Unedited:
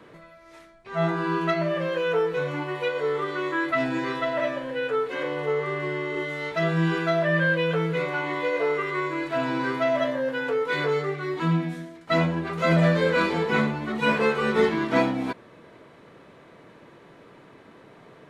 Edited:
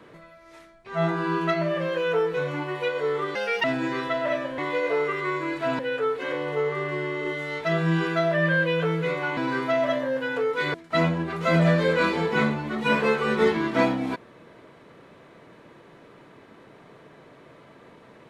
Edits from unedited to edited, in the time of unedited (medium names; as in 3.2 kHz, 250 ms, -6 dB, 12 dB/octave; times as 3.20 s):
3.35–3.76 s: speed 141%
8.28–9.49 s: move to 4.70 s
10.86–11.91 s: delete